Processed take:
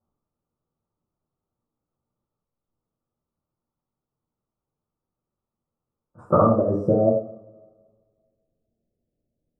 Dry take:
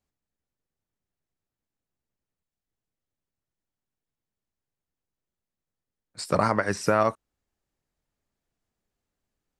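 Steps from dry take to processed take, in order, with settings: elliptic low-pass 1300 Hz, stop band 40 dB, from 6.41 s 660 Hz; two-slope reverb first 0.53 s, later 1.9 s, from -25 dB, DRR -6 dB; gain +1.5 dB

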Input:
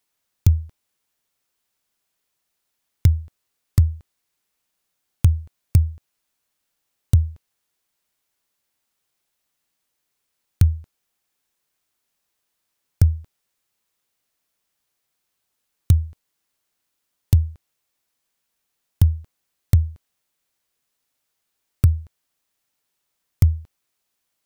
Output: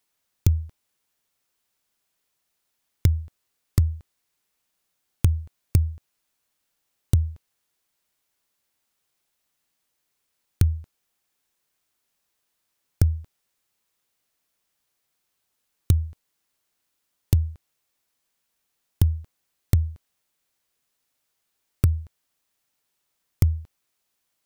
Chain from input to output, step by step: compressor, threshold -14 dBFS, peak gain reduction 5 dB

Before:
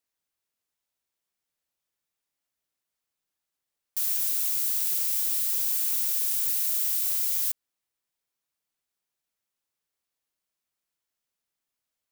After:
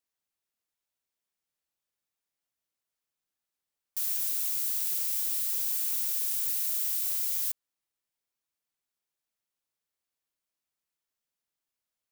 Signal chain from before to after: 5.32–5.91 HPF 270 Hz 24 dB/oct; gain -3.5 dB

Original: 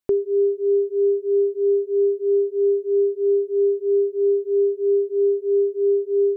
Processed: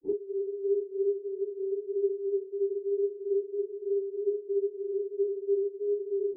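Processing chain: phase scrambler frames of 0.1 s; vocal tract filter u

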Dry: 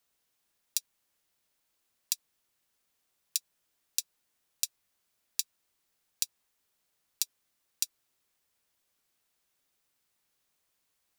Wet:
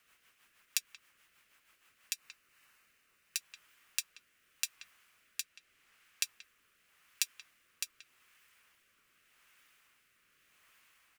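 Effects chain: hard clip -6 dBFS, distortion -23 dB; 5.41–6.24 high shelf 8800 Hz -4.5 dB; limiter -17 dBFS, peak gain reduction 11 dB; band shelf 1800 Hz +11.5 dB; speakerphone echo 0.18 s, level -13 dB; rotary speaker horn 6.3 Hz, later 0.85 Hz, at 1.81; 2.13–3.37 notch 3300 Hz, Q 11; gain +8.5 dB

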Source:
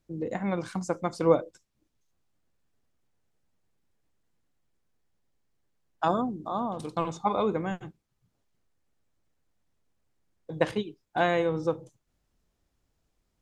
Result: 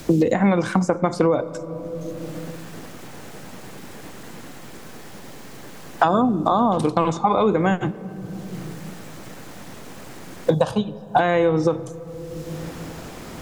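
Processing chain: 0.53–0.98 notch 4400 Hz, Q 12; in parallel at -0.5 dB: compressor, threshold -32 dBFS, peak gain reduction 16 dB; 10.54–11.19 on the sum: fixed phaser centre 850 Hz, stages 4; on a send at -20 dB: reverb RT60 1.4 s, pre-delay 4 ms; on the sum: maximiser +15.5 dB; three-band squash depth 100%; gain -6.5 dB

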